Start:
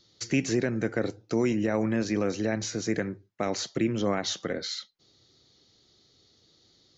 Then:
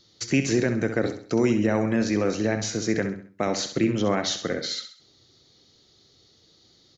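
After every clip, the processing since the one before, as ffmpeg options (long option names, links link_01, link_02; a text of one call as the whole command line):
ffmpeg -i in.wav -af "aecho=1:1:66|132|198|264:0.335|0.137|0.0563|0.0231,volume=3.5dB" out.wav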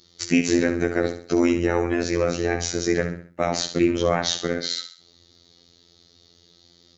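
ffmpeg -i in.wav -af "afftfilt=real='hypot(re,im)*cos(PI*b)':imag='0':win_size=2048:overlap=0.75,volume=6dB" out.wav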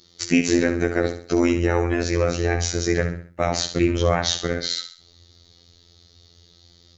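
ffmpeg -i in.wav -af "asubboost=boost=5:cutoff=99,volume=1.5dB" out.wav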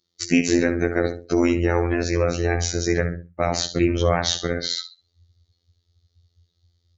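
ffmpeg -i in.wav -af "afftdn=noise_reduction=21:noise_floor=-39" out.wav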